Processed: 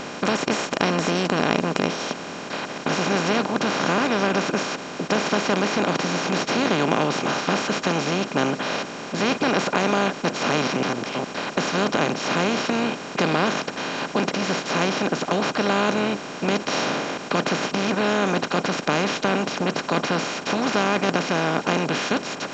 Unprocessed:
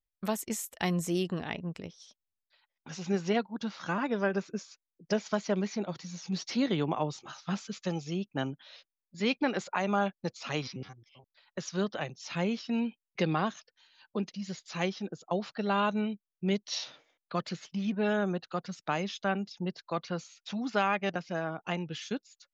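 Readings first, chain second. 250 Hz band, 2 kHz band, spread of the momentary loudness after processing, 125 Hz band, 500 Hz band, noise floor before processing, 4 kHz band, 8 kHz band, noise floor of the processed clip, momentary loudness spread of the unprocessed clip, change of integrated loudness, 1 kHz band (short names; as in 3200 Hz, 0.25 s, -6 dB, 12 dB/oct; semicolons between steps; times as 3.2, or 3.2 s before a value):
+8.5 dB, +13.5 dB, 5 LU, +7.5 dB, +10.5 dB, under -85 dBFS, +14.0 dB, +12.0 dB, -35 dBFS, 11 LU, +10.0 dB, +12.0 dB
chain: per-bin compression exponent 0.2; A-law 128 kbps 16000 Hz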